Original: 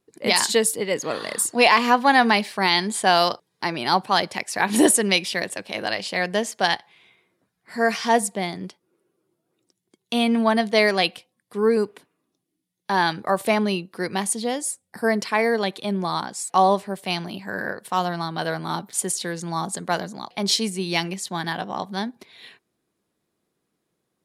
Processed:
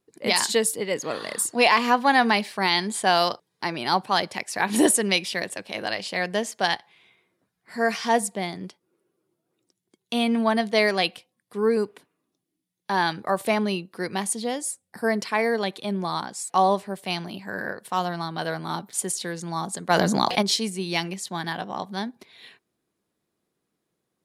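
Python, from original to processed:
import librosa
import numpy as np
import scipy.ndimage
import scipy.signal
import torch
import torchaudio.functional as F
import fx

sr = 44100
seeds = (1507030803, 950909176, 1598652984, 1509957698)

y = fx.env_flatten(x, sr, amount_pct=70, at=(19.89, 20.41), fade=0.02)
y = F.gain(torch.from_numpy(y), -2.5).numpy()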